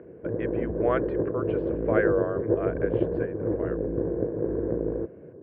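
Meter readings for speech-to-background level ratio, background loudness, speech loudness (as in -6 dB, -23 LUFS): -3.5 dB, -28.5 LUFS, -32.0 LUFS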